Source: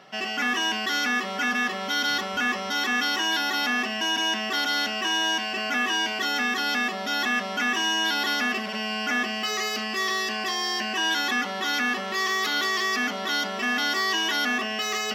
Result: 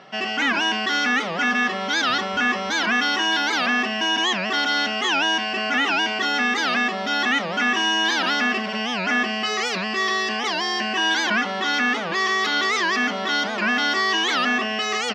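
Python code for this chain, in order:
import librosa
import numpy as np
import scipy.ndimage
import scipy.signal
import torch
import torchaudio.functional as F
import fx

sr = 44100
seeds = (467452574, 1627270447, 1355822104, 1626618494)

y = fx.air_absorb(x, sr, metres=87.0)
y = fx.record_warp(y, sr, rpm=78.0, depth_cents=250.0)
y = y * 10.0 ** (5.0 / 20.0)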